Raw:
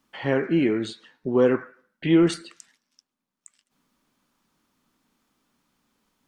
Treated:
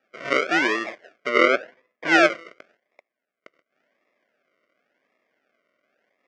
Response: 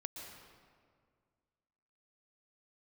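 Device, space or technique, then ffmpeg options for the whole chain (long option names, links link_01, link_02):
circuit-bent sampling toy: -filter_complex "[0:a]acrusher=samples=41:mix=1:aa=0.000001:lfo=1:lforange=24.6:lforate=0.92,highpass=540,equalizer=frequency=610:width_type=q:width=4:gain=6,equalizer=frequency=880:width_type=q:width=4:gain=-10,equalizer=frequency=1500:width_type=q:width=4:gain=5,equalizer=frequency=2100:width_type=q:width=4:gain=9,equalizer=frequency=4000:width_type=q:width=4:gain=-9,lowpass=frequency=5100:width=0.5412,lowpass=frequency=5100:width=1.3066,asettb=1/sr,asplit=3[link_01][link_02][link_03];[link_01]atrim=end=1.294[link_04];[link_02]atrim=start=1.29:end=2.07,asetpts=PTS-STARTPTS,afade=type=in:duration=0.004:curve=qsin,afade=type=out:start_time=0.776:duration=0.004:curve=qsin,aemphasis=mode=reproduction:type=50kf[link_05];[link_03]atrim=start=2.066[link_06];[link_04][link_05]acrossfade=duration=0.004:curve1=hsin:curve2=qsin[link_07];[link_07][link_06]acrossfade=duration=0.004:curve1=qsin:curve2=hsin,volume=4.5dB"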